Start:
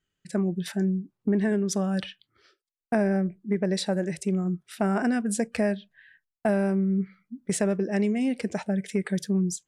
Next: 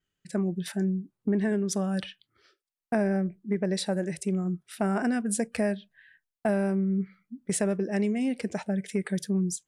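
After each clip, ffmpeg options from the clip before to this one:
-af "adynamicequalizer=threshold=0.002:dfrequency=9900:dqfactor=2.6:tfrequency=9900:tqfactor=2.6:attack=5:release=100:ratio=0.375:range=3.5:mode=boostabove:tftype=bell,volume=0.794"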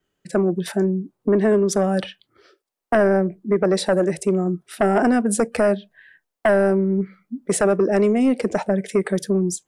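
-filter_complex "[0:a]acrossover=split=280|1000[s0][s1][s2];[s0]alimiter=level_in=2.37:limit=0.0631:level=0:latency=1,volume=0.422[s3];[s1]aeval=exprs='0.119*sin(PI/2*2.24*val(0)/0.119)':c=same[s4];[s3][s4][s2]amix=inputs=3:normalize=0,volume=1.88"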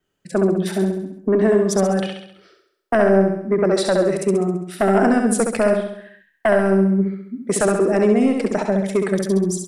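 -af "aecho=1:1:67|134|201|268|335|402|469:0.562|0.292|0.152|0.0791|0.0411|0.0214|0.0111"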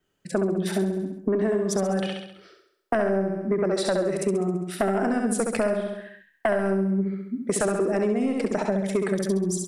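-af "acompressor=threshold=0.0891:ratio=6"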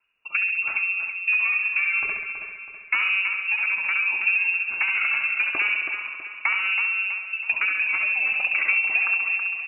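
-af "aphaser=in_gain=1:out_gain=1:delay=4.1:decay=0.27:speed=0.23:type=triangular,lowpass=f=2500:t=q:w=0.5098,lowpass=f=2500:t=q:w=0.6013,lowpass=f=2500:t=q:w=0.9,lowpass=f=2500:t=q:w=2.563,afreqshift=-2900,aecho=1:1:325|650|975|1300|1625:0.398|0.179|0.0806|0.0363|0.0163"

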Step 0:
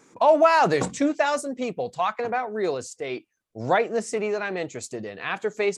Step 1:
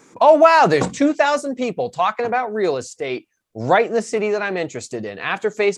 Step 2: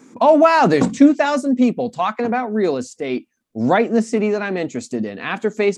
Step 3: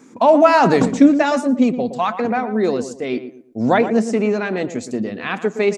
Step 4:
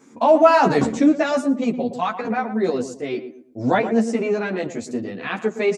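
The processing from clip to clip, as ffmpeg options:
-filter_complex "[0:a]acrossover=split=6600[s0][s1];[s1]acompressor=threshold=0.00501:ratio=4:attack=1:release=60[s2];[s0][s2]amix=inputs=2:normalize=0,volume=2"
-af "equalizer=f=240:w=2.2:g=14.5,volume=0.794"
-filter_complex "[0:a]asplit=2[s0][s1];[s1]adelay=116,lowpass=f=1400:p=1,volume=0.316,asplit=2[s2][s3];[s3]adelay=116,lowpass=f=1400:p=1,volume=0.32,asplit=2[s4][s5];[s5]adelay=116,lowpass=f=1400:p=1,volume=0.32,asplit=2[s6][s7];[s7]adelay=116,lowpass=f=1400:p=1,volume=0.32[s8];[s0][s2][s4][s6][s8]amix=inputs=5:normalize=0"
-filter_complex "[0:a]asplit=2[s0][s1];[s1]adelay=11.4,afreqshift=1.3[s2];[s0][s2]amix=inputs=2:normalize=1"

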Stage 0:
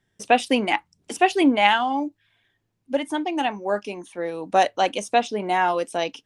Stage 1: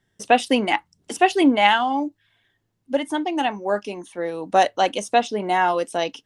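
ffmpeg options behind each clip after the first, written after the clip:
-af "bandreject=f=2400:w=13,volume=1.19"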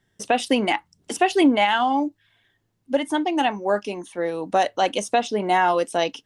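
-af "alimiter=limit=0.299:level=0:latency=1:release=110,volume=1.19"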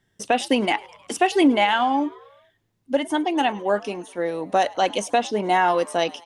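-filter_complex "[0:a]asplit=5[s0][s1][s2][s3][s4];[s1]adelay=104,afreqshift=88,volume=0.0708[s5];[s2]adelay=208,afreqshift=176,volume=0.0417[s6];[s3]adelay=312,afreqshift=264,volume=0.0245[s7];[s4]adelay=416,afreqshift=352,volume=0.0146[s8];[s0][s5][s6][s7][s8]amix=inputs=5:normalize=0"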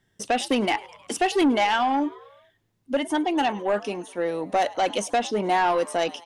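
-af "asoftclip=type=tanh:threshold=0.178"

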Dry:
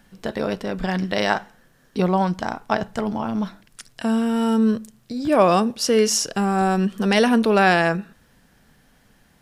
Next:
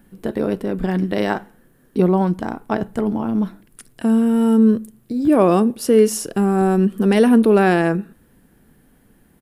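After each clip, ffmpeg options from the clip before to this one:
-af "firequalizer=gain_entry='entry(130,0);entry(340,6);entry(600,-4);entry(5600,-13);entry(10000,2)':delay=0.05:min_phase=1,volume=1.33"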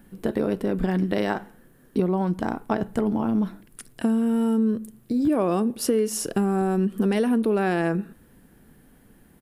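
-af "acompressor=threshold=0.112:ratio=6"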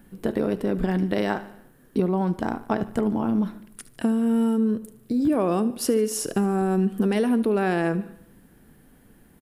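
-af "aecho=1:1:74|148|222|296|370:0.133|0.072|0.0389|0.021|0.0113"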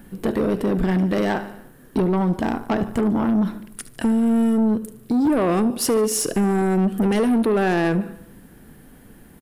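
-af "asoftclip=type=tanh:threshold=0.0794,volume=2.37"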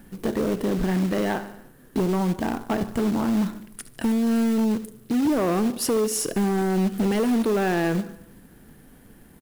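-af "acrusher=bits=4:mode=log:mix=0:aa=0.000001,volume=0.668"

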